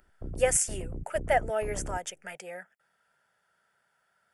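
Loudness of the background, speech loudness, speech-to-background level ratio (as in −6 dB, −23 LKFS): −41.5 LKFS, −29.0 LKFS, 12.5 dB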